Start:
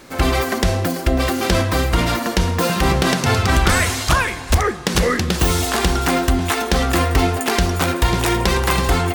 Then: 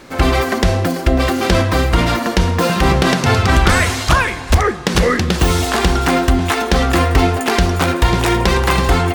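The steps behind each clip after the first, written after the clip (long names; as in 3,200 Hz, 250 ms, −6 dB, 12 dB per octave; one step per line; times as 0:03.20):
high-shelf EQ 6,900 Hz −8 dB
level +3.5 dB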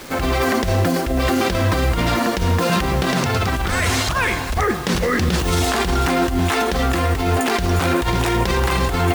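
compressor whose output falls as the input rises −17 dBFS, ratio −1
brickwall limiter −9 dBFS, peak gain reduction 6 dB
bit-depth reduction 6 bits, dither none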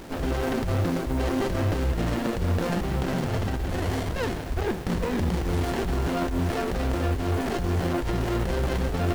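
windowed peak hold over 33 samples
level −6 dB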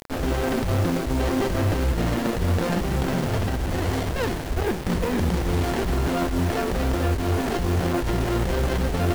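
bit-depth reduction 6 bits, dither none
level +2.5 dB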